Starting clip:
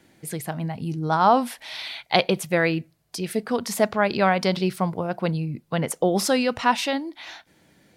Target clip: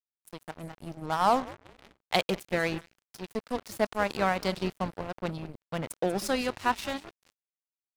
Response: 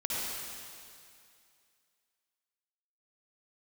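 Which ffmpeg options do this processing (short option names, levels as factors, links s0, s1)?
-filter_complex "[0:a]asplit=7[s0][s1][s2][s3][s4][s5][s6];[s1]adelay=191,afreqshift=-150,volume=0.178[s7];[s2]adelay=382,afreqshift=-300,volume=0.104[s8];[s3]adelay=573,afreqshift=-450,volume=0.0596[s9];[s4]adelay=764,afreqshift=-600,volume=0.0347[s10];[s5]adelay=955,afreqshift=-750,volume=0.0202[s11];[s6]adelay=1146,afreqshift=-900,volume=0.0116[s12];[s0][s7][s8][s9][s10][s11][s12]amix=inputs=7:normalize=0,aeval=exprs='sgn(val(0))*max(abs(val(0))-0.0376,0)':c=same,asettb=1/sr,asplit=3[s13][s14][s15];[s13]atrim=end=1.064[s16];[s14]atrim=start=1.06:end=2.37,asetpts=PTS-STARTPTS,afade=t=in:d=0.004:c=qsin,afade=t=out:st=1.306:d=0.004:c=qsin,adynamicsmooth=sensitivity=8:basefreq=740[s17];[s15]atrim=start=2.366[s18];[s16][s17]acrossfade=d=0.004:c1=hsin:c2=qsin[s19];[s19][s18]acrossfade=d=0.004:c1=qsin:c2=hsin,volume=0.562"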